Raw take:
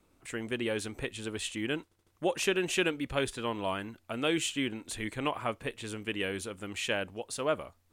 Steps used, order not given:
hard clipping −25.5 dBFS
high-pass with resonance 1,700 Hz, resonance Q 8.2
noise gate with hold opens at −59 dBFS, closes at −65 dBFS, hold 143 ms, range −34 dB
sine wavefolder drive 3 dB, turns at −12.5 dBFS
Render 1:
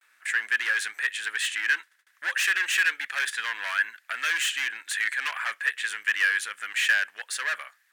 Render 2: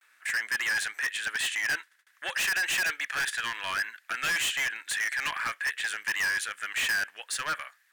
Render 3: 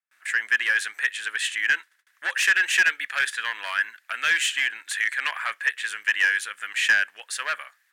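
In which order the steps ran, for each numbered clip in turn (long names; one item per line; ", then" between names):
noise gate with hold, then sine wavefolder, then hard clipping, then high-pass with resonance
noise gate with hold, then sine wavefolder, then high-pass with resonance, then hard clipping
hard clipping, then high-pass with resonance, then noise gate with hold, then sine wavefolder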